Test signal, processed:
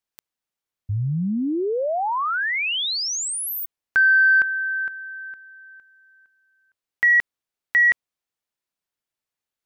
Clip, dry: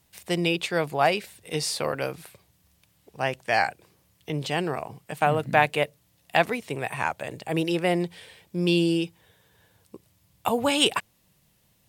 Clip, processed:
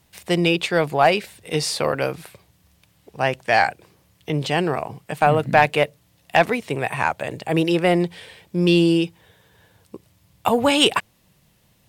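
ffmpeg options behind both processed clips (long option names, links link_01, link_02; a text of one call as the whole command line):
ffmpeg -i in.wav -af "highshelf=frequency=5800:gain=-5.5,acontrast=66" out.wav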